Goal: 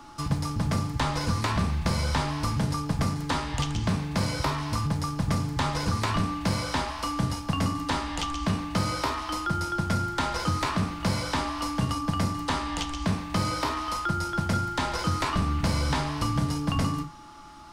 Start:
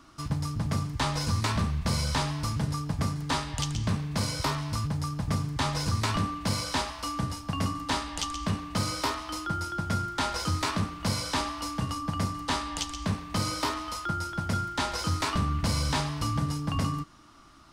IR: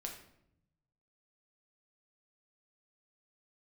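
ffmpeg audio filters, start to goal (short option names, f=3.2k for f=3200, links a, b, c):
-filter_complex "[0:a]acrossover=split=160|3000[a][b][c];[a]acompressor=threshold=-31dB:ratio=4[d];[b]acompressor=threshold=-31dB:ratio=4[e];[c]acompressor=threshold=-44dB:ratio=4[f];[d][e][f]amix=inputs=3:normalize=0,asplit=2[g][h];[1:a]atrim=start_sample=2205,atrim=end_sample=3528[i];[h][i]afir=irnorm=-1:irlink=0,volume=2.5dB[j];[g][j]amix=inputs=2:normalize=0,aeval=exprs='val(0)+0.00398*sin(2*PI*850*n/s)':c=same"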